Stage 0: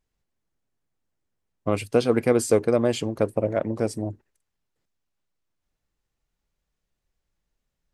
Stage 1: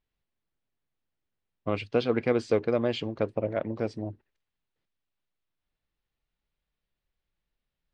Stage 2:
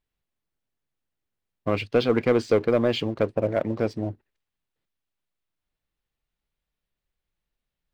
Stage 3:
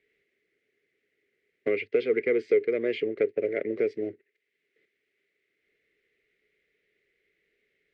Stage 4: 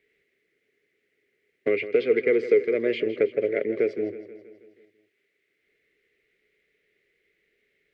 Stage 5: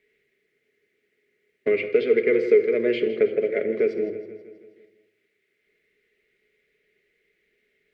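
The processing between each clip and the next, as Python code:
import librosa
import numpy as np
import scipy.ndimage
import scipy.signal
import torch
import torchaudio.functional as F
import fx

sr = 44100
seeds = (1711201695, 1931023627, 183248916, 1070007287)

y1 = scipy.signal.sosfilt(scipy.signal.butter(4, 3900.0, 'lowpass', fs=sr, output='sos'), x)
y1 = fx.high_shelf(y1, sr, hz=2800.0, db=9.0)
y1 = y1 * 10.0 ** (-5.5 / 20.0)
y2 = fx.leveller(y1, sr, passes=1)
y2 = y2 * 10.0 ** (2.0 / 20.0)
y3 = fx.double_bandpass(y2, sr, hz=930.0, octaves=2.3)
y3 = fx.band_squash(y3, sr, depth_pct=70)
y3 = y3 * 10.0 ** (5.0 / 20.0)
y4 = fx.echo_feedback(y3, sr, ms=161, feedback_pct=57, wet_db=-13.5)
y4 = y4 * 10.0 ** (3.0 / 20.0)
y5 = fx.room_shoebox(y4, sr, seeds[0], volume_m3=2500.0, walls='furnished', distance_m=1.4)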